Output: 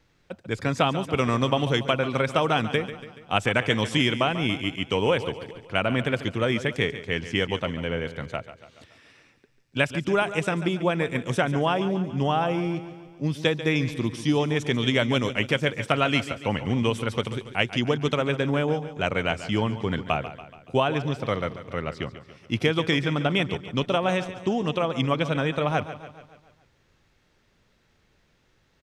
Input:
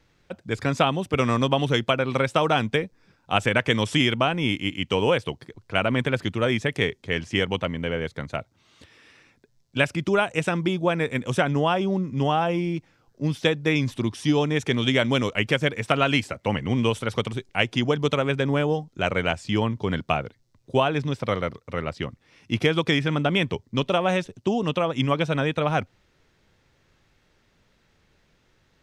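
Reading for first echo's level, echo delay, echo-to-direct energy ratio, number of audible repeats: -13.0 dB, 142 ms, -11.5 dB, 5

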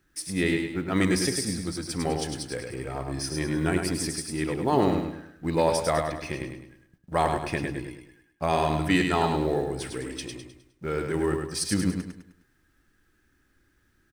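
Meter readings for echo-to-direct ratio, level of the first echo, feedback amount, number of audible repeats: -4.0 dB, -5.0 dB, 40%, 4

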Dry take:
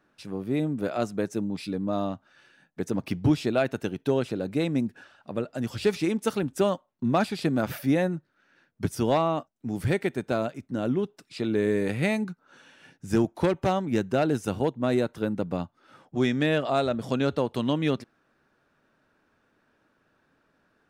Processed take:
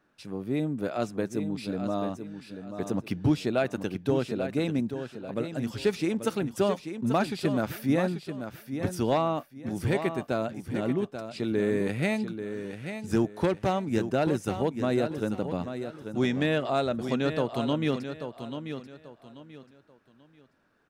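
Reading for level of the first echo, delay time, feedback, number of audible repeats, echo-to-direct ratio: -9.0 dB, 837 ms, 28%, 3, -8.5 dB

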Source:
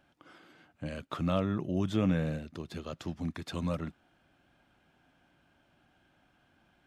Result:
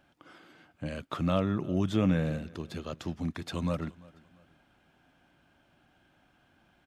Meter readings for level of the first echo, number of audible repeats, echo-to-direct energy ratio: -23.0 dB, 2, -22.5 dB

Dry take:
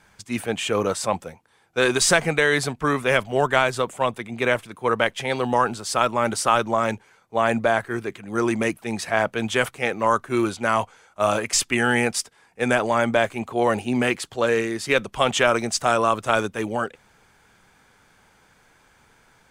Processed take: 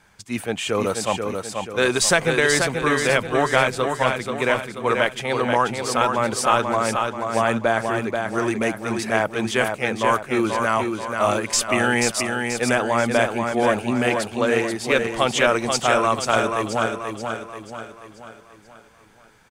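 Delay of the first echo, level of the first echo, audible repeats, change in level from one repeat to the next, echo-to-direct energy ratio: 484 ms, -5.0 dB, 5, -6.5 dB, -4.0 dB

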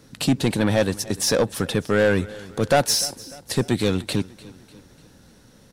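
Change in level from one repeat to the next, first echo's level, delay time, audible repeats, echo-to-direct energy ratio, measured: -6.0 dB, -20.0 dB, 298 ms, 3, -19.0 dB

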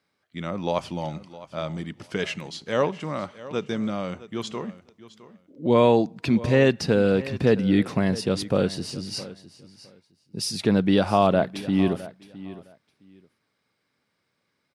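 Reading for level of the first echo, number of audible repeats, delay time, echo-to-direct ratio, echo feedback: -17.0 dB, 2, 662 ms, -17.0 dB, 18%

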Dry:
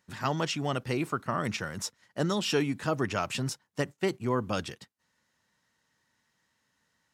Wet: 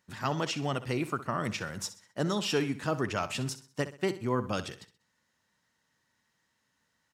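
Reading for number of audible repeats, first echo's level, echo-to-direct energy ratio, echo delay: 3, -14.0 dB, -13.5 dB, 64 ms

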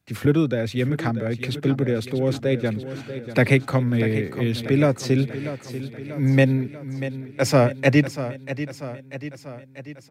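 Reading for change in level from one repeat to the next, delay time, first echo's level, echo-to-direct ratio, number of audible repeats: -4.5 dB, 640 ms, -12.0 dB, -10.0 dB, 5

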